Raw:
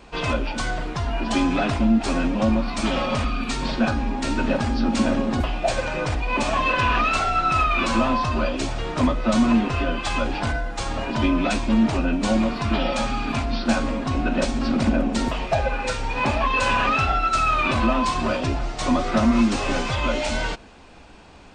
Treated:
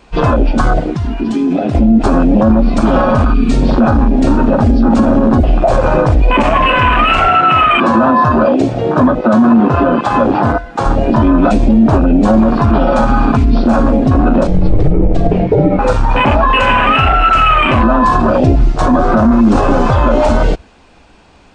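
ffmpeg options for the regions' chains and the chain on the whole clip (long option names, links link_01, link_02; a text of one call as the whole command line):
ffmpeg -i in.wav -filter_complex "[0:a]asettb=1/sr,asplit=3[link_01][link_02][link_03];[link_01]atrim=end=0.794[link_04];[link_02]atrim=start=0.79:end=1.75,asetpts=PTS-STARTPTS,afade=type=in:duration=0.004:curve=qsin,afade=type=out:start_time=0.956:duration=0.004:curve=qsin,highpass=frequency=150:poles=1,acompressor=threshold=-26dB:ratio=10:attack=3.2:release=140:knee=1:detection=peak[link_05];[link_03]atrim=start=1.746[link_06];[link_04][link_05]acrossfade=duration=0.004:curve1=hsin:curve2=qsin[link_07];[link_07][link_06]acrossfade=duration=0.004:curve1=qsin:curve2=hsin,asettb=1/sr,asplit=3[link_08][link_09][link_10];[link_08]atrim=end=7.284[link_11];[link_09]atrim=start=7.28:end=10.85,asetpts=PTS-STARTPTS,afade=type=in:duration=0.004:curve=qsin,afade=type=out:start_time=3.566:duration=0.004:curve=qsin,highpass=120,highshelf=frequency=5200:gain=-7[link_12];[link_10]atrim=start=10.846[link_13];[link_11][link_12]acrossfade=duration=0.004:curve1=hsin:curve2=qsin[link_14];[link_14][link_13]acrossfade=duration=0.004:curve1=qsin:curve2=hsin,asettb=1/sr,asplit=3[link_15][link_16][link_17];[link_15]atrim=end=14.474[link_18];[link_16]atrim=start=14.47:end=15.79,asetpts=PTS-STARTPTS,afade=type=in:duration=0.004:curve=qsin,afade=type=out:start_time=1.316:duration=0.004:curve=qsin,highpass=64,aemphasis=mode=reproduction:type=75fm,afreqshift=-230[link_19];[link_17]atrim=start=15.786[link_20];[link_18][link_19]acrossfade=duration=0.004:curve1=hsin:curve2=qsin[link_21];[link_21][link_20]acrossfade=duration=0.004:curve1=qsin:curve2=hsin,afwtdn=0.0631,alimiter=level_in=19.5dB:limit=-1dB:release=50:level=0:latency=1,volume=-1dB" out.wav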